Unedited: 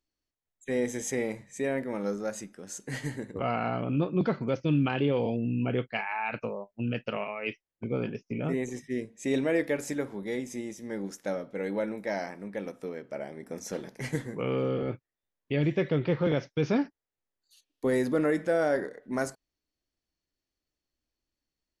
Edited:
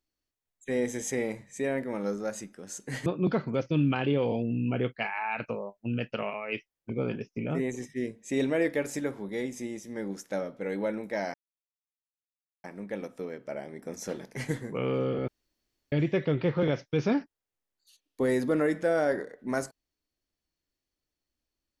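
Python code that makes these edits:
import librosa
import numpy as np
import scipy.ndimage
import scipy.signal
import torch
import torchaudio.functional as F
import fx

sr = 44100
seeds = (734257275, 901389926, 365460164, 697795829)

y = fx.edit(x, sr, fx.cut(start_s=3.06, length_s=0.94),
    fx.insert_silence(at_s=12.28, length_s=1.3),
    fx.room_tone_fill(start_s=14.92, length_s=0.64), tone=tone)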